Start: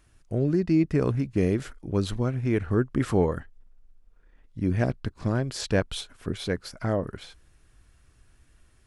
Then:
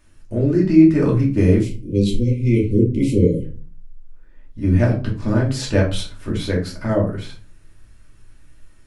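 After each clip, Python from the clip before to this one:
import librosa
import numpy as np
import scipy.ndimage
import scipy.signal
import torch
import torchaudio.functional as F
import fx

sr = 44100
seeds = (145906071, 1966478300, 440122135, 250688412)

y = fx.spec_erase(x, sr, start_s=1.58, length_s=1.87, low_hz=580.0, high_hz=2000.0)
y = fx.room_shoebox(y, sr, seeds[0], volume_m3=200.0, walls='furnished', distance_m=2.6)
y = y * librosa.db_to_amplitude(1.0)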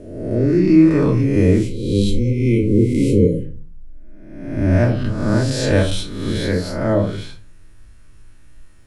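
y = fx.spec_swells(x, sr, rise_s=1.01)
y = y * librosa.db_to_amplitude(-1.0)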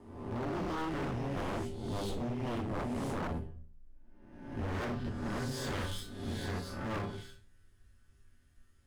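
y = fx.lower_of_two(x, sr, delay_ms=0.61)
y = fx.comb_fb(y, sr, f0_hz=79.0, decay_s=0.31, harmonics='odd', damping=0.0, mix_pct=80)
y = 10.0 ** (-24.5 / 20.0) * (np.abs((y / 10.0 ** (-24.5 / 20.0) + 3.0) % 4.0 - 2.0) - 1.0)
y = y * librosa.db_to_amplitude(-6.0)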